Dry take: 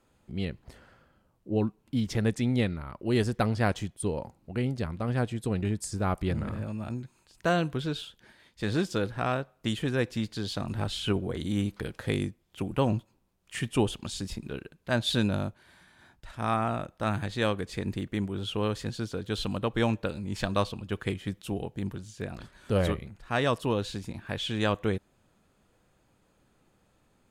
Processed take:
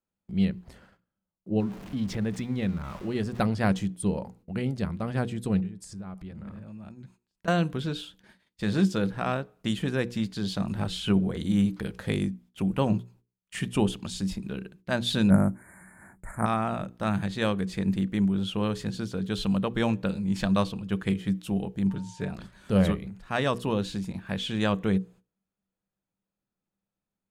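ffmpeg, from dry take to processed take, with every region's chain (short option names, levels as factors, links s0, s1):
-filter_complex "[0:a]asettb=1/sr,asplit=3[s0][s1][s2];[s0]atrim=end=1.604[s3];[s1]atrim=start=1.6:end=3.4,asetpts=PTS-STARTPTS,afade=t=in:d=0.004:c=qsin,afade=t=out:st=1.796:d=0.004:c=qsin,aeval=exprs='val(0)+0.5*0.0119*sgn(val(0))':c=same,highshelf=f=6100:g=-9.5,acompressor=threshold=0.0224:ratio=1.5:attack=3.2:release=140:knee=1:detection=peak[s4];[s2]atrim=start=3.396[s5];[s3][s4]acrossfade=d=0.004:c1=hsin:c2=qsin[s6];[s6][s5]acrossfade=d=0.004:c1=qsin:c2=hsin,asettb=1/sr,asplit=3[s7][s8][s9];[s7]atrim=end=5.604[s10];[s8]atrim=start=5.6:end=7.48,asetpts=PTS-STARTPTS,afade=t=in:d=0.004:c=qsin,afade=t=out:st=1.876:d=0.004:c=qsin,highshelf=f=5900:g=-6,acompressor=threshold=0.00891:ratio=6:attack=3.2:release=140:knee=1:detection=peak[s11];[s9]atrim=start=7.476[s12];[s10][s11]acrossfade=d=0.004:c1=hsin:c2=qsin[s13];[s13][s12]acrossfade=d=0.004:c1=qsin:c2=hsin,asettb=1/sr,asplit=3[s14][s15][s16];[s14]atrim=end=15.304[s17];[s15]atrim=start=15.3:end=16.46,asetpts=PTS-STARTPTS,afade=t=in:d=0.004:c=qsin,afade=t=out:st=1.156:d=0.004:c=qsin,equalizer=f=10000:t=o:w=0.84:g=8.5,acontrast=35,asuperstop=centerf=4000:order=20:qfactor=0.86[s18];[s16]atrim=start=16.456[s19];[s17][s18]acrossfade=d=0.004:c1=hsin:c2=qsin[s20];[s20][s19]acrossfade=d=0.004:c1=qsin:c2=hsin,asettb=1/sr,asplit=3[s21][s22][s23];[s21]atrim=end=21.904[s24];[s22]atrim=start=21.9:end=22.31,asetpts=PTS-STARTPTS,afade=t=in:d=0.004:c=qsin,afade=t=out:st=0.406:d=0.004:c=qsin,lowpass=9300,aecho=1:1:7:0.66,atrim=end_sample=18081,aeval=exprs='val(0)+0.00282*sin(2*PI*910*n/s)':c=same[s25];[s23]atrim=start=22.306[s26];[s24][s25]acrossfade=d=0.004:c1=hsin:c2=qsin[s27];[s27][s26]acrossfade=d=0.004:c1=qsin:c2=hsin,agate=range=0.0631:threshold=0.00158:ratio=16:detection=peak,equalizer=f=190:w=6.7:g=13.5,bandreject=f=60:t=h:w=6,bandreject=f=120:t=h:w=6,bandreject=f=180:t=h:w=6,bandreject=f=240:t=h:w=6,bandreject=f=300:t=h:w=6,bandreject=f=360:t=h:w=6,bandreject=f=420:t=h:w=6,bandreject=f=480:t=h:w=6"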